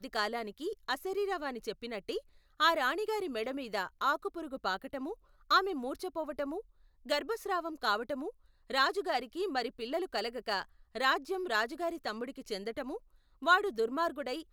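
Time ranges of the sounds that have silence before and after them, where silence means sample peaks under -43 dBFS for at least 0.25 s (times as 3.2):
2.6–5.14
5.51–6.61
7.06–8.3
8.7–10.63
10.95–12.97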